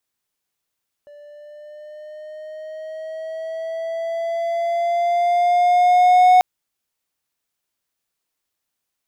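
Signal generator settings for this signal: gliding synth tone triangle, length 5.34 s, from 583 Hz, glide +4 st, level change +32 dB, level -6 dB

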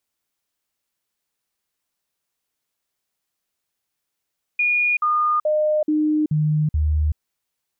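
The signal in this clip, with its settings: stepped sine 2440 Hz down, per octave 1, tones 6, 0.38 s, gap 0.05 s -16 dBFS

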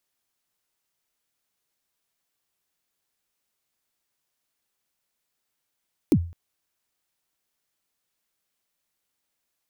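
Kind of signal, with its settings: kick drum length 0.21 s, from 370 Hz, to 85 Hz, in 63 ms, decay 0.40 s, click on, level -11 dB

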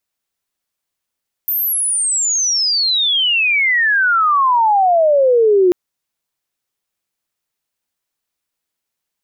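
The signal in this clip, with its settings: chirp logarithmic 14000 Hz -> 350 Hz -15 dBFS -> -8 dBFS 4.24 s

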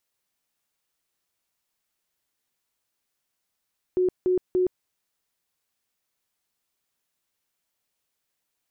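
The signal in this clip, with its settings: tone bursts 366 Hz, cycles 43, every 0.29 s, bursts 3, -18.5 dBFS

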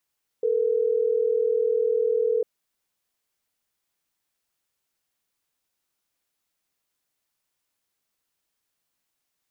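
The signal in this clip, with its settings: call progress tone ringback tone, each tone -22.5 dBFS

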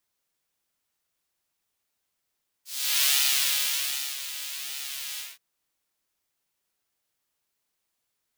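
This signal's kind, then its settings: synth patch with pulse-width modulation C#3, noise -7 dB, filter highpass, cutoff 2400 Hz, Q 1.3, filter envelope 1 oct, attack 0.394 s, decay 1.13 s, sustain -13.5 dB, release 0.20 s, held 2.53 s, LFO 1.3 Hz, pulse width 32%, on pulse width 7%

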